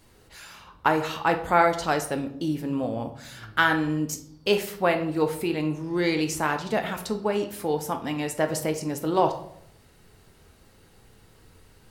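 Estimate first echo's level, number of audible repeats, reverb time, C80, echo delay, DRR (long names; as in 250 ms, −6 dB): no echo audible, no echo audible, 0.70 s, 14.5 dB, no echo audible, 5.0 dB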